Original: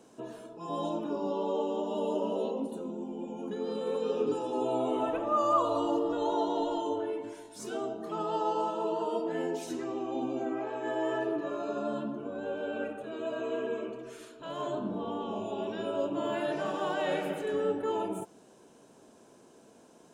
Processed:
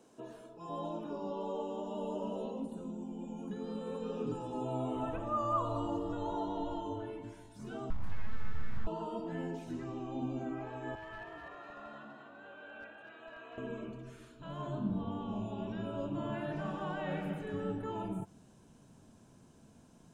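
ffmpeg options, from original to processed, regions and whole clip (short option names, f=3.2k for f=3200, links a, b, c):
-filter_complex "[0:a]asettb=1/sr,asplit=3[a][b][c];[a]atrim=end=1.404[d];[b]atrim=start=1.4:end=6.47,asetpts=PTS-STARTPTS,afade=t=in:d=0.004:c=qsin,afade=t=out:st=5.066:d=0.004:c=qsin,equalizer=f=8k:t=o:w=0.61:g=7,bandreject=f=2.2k:w=29[e];[c]atrim=start=6.466[f];[d][e]acrossfade=d=0.004:c1=hsin:c2=qsin[g];[g][f]acrossfade=d=0.004:c1=qsin:c2=hsin,asettb=1/sr,asplit=3[h][i][j];[h]atrim=end=7.904[k];[i]atrim=start=7.9:end=8.87,asetpts=PTS-STARTPTS,afade=t=in:d=0.004:c=qsin,afade=t=out:st=0.966:d=0.004:c=qsin,highpass=f=300:p=1,acompressor=threshold=-37dB:ratio=6:attack=3.2:release=140:knee=1:detection=peak,aeval=exprs='abs(val(0))':c=same[l];[j]atrim=start=8.866[m];[k][l]acrossfade=d=0.004:c1=hsin:c2=qsin[n];[n][m]acrossfade=d=0.004:c1=qsin:c2=hsin,asettb=1/sr,asplit=3[o][p][q];[o]atrim=end=10.954[r];[p]atrim=start=10.95:end=13.58,asetpts=PTS-STARTPTS,afade=t=in:d=0.004:c=qsin,afade=t=out:st=2.626:d=0.004:c=qsin,bandpass=f=1.8k:t=q:w=1.1,asoftclip=type=hard:threshold=-35dB,asplit=7[s][t][u][v][w][x][y];[t]adelay=247,afreqshift=55,volume=-5dB[z];[u]adelay=494,afreqshift=110,volume=-11.7dB[aa];[v]adelay=741,afreqshift=165,volume=-18.5dB[ab];[w]adelay=988,afreqshift=220,volume=-25.2dB[ac];[x]adelay=1235,afreqshift=275,volume=-32dB[ad];[y]adelay=1482,afreqshift=330,volume=-38.7dB[ae];[s][z][aa][ab][ac][ad][ae]amix=inputs=7:normalize=0,atrim=end_sample=115983[af];[q]atrim=start=13.576[ag];[r][af]acrossfade=d=0.004:c1=hsin:c2=qsin[ah];[ah][ag]acrossfade=d=0.004:c1=qsin:c2=hsin,acrossover=split=2700[ai][aj];[aj]acompressor=threshold=-59dB:ratio=4:attack=1:release=60[ak];[ai][ak]amix=inputs=2:normalize=0,asubboost=boost=12:cutoff=120,volume=-5dB"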